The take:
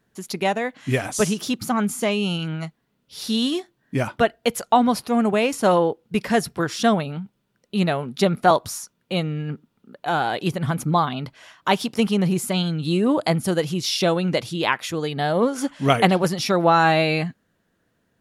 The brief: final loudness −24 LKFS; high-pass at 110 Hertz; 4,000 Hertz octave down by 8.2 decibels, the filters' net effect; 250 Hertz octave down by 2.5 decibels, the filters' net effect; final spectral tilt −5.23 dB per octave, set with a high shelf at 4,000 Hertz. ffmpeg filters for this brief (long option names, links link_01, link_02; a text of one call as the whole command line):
ffmpeg -i in.wav -af "highpass=110,equalizer=frequency=250:width_type=o:gain=-3,highshelf=frequency=4000:gain=-6.5,equalizer=frequency=4000:width_type=o:gain=-7.5,volume=-0.5dB" out.wav